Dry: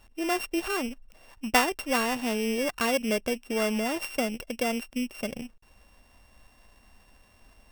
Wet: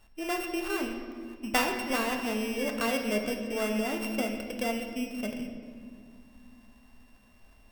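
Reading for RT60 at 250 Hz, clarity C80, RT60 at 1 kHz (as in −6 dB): 3.8 s, 7.0 dB, 1.7 s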